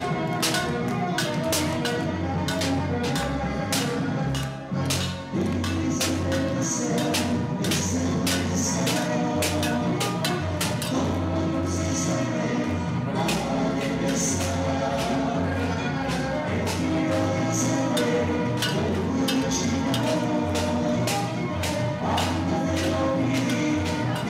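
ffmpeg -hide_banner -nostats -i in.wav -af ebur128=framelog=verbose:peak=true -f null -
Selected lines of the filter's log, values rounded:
Integrated loudness:
  I:         -25.0 LUFS
  Threshold: -35.0 LUFS
Loudness range:
  LRA:         1.8 LU
  Threshold: -45.0 LUFS
  LRA low:   -25.9 LUFS
  LRA high:  -24.1 LUFS
True peak:
  Peak:      -14.1 dBFS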